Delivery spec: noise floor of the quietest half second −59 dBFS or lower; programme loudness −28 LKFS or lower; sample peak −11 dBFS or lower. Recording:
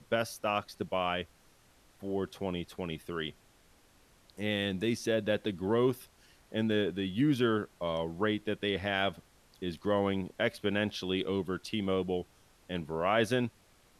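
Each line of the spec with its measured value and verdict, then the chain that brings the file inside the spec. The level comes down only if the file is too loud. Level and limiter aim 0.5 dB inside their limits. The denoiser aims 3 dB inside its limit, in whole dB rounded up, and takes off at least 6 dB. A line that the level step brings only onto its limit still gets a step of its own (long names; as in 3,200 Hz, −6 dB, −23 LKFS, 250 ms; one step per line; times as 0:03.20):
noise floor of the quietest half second −63 dBFS: in spec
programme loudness −32.5 LKFS: in spec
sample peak −15.0 dBFS: in spec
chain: no processing needed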